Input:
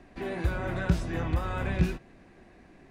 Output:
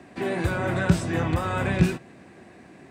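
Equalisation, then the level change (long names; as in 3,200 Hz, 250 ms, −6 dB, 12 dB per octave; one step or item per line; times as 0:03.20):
high-pass filter 89 Hz 24 dB per octave
parametric band 8,100 Hz +9 dB 0.24 octaves
+7.0 dB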